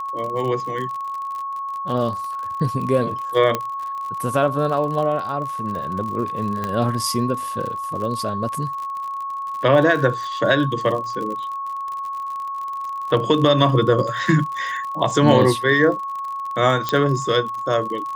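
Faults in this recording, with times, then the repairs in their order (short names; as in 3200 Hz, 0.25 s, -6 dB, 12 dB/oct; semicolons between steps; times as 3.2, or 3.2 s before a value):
crackle 51/s -28 dBFS
tone 1100 Hz -25 dBFS
3.55 pop -7 dBFS
6.64 pop -12 dBFS
16.89 pop -7 dBFS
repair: de-click; notch 1100 Hz, Q 30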